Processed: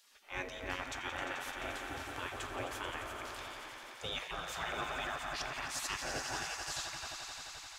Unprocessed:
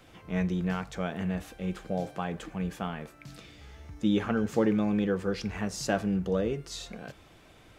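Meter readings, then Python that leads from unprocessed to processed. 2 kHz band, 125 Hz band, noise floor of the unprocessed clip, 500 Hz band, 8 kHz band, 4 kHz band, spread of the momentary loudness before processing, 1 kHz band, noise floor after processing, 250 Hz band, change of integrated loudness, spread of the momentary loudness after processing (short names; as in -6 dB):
+1.0 dB, -18.0 dB, -56 dBFS, -13.0 dB, +2.0 dB, +2.5 dB, 19 LU, -2.0 dB, -51 dBFS, -22.0 dB, -9.0 dB, 6 LU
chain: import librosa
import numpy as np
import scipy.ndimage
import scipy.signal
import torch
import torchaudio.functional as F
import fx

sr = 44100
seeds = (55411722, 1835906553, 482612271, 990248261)

y = fx.echo_swell(x, sr, ms=87, loudest=5, wet_db=-12.0)
y = fx.spec_gate(y, sr, threshold_db=-20, keep='weak')
y = y * librosa.db_to_amplitude(1.5)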